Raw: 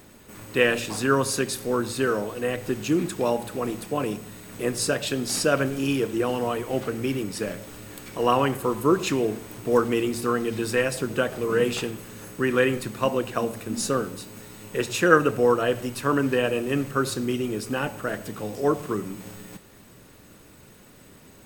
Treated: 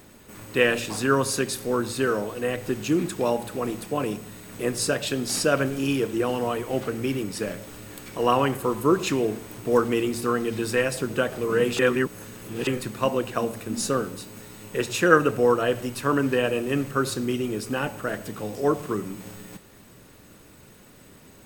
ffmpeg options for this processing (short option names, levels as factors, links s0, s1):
-filter_complex "[0:a]asplit=3[s0][s1][s2];[s0]atrim=end=11.792[s3];[s1]atrim=start=11.788:end=12.672,asetpts=PTS-STARTPTS,areverse[s4];[s2]atrim=start=12.668[s5];[s3][s4]acrossfade=d=0.004:c1=hsin:c2=hsin[s6];[s6][s5]acrossfade=d=0.004:c1=hsin:c2=hsin"